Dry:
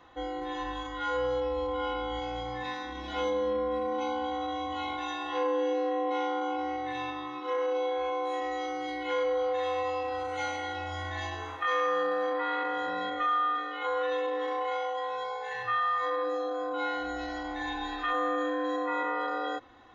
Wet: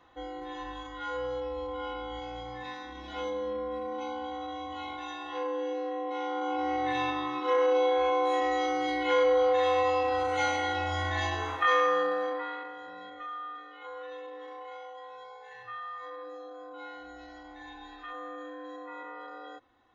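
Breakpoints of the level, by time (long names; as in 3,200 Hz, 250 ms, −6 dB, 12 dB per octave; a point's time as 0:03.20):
0:06.14 −4.5 dB
0:06.85 +5 dB
0:11.66 +5 dB
0:12.33 −2.5 dB
0:12.76 −12 dB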